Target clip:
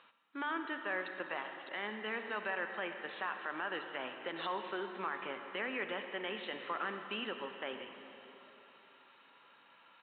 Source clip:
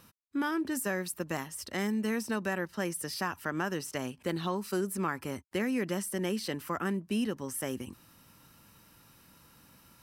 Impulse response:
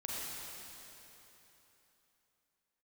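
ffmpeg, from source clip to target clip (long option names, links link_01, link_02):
-filter_complex "[0:a]highpass=660,alimiter=level_in=4.5dB:limit=-24dB:level=0:latency=1:release=30,volume=-4.5dB,asplit=2[link_01][link_02];[1:a]atrim=start_sample=2205[link_03];[link_02][link_03]afir=irnorm=-1:irlink=0,volume=-4.5dB[link_04];[link_01][link_04]amix=inputs=2:normalize=0,aresample=8000,aresample=44100,volume=-1dB"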